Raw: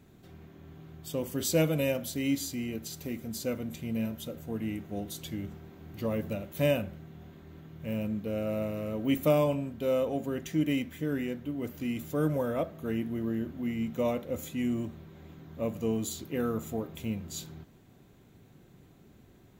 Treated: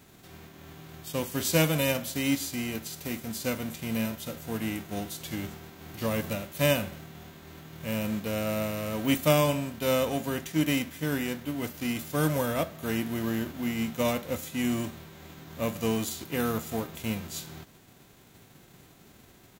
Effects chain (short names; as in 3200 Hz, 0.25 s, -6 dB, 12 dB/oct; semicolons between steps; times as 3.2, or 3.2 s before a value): spectral whitening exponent 0.6; outdoor echo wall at 36 m, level -29 dB; attack slew limiter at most 440 dB/s; gain +2 dB